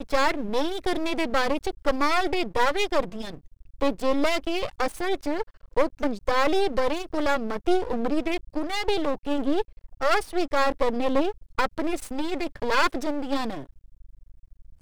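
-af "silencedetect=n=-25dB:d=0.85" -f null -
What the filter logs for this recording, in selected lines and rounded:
silence_start: 13.58
silence_end: 14.81 | silence_duration: 1.23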